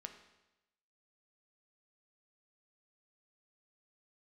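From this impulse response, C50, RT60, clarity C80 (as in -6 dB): 9.0 dB, 0.95 s, 11.0 dB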